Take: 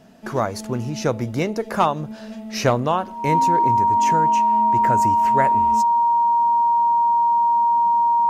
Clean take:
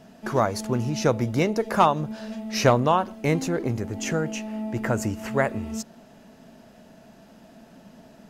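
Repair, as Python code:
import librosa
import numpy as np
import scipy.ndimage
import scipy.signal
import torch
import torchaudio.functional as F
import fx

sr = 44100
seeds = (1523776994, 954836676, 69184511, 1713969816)

y = fx.notch(x, sr, hz=940.0, q=30.0)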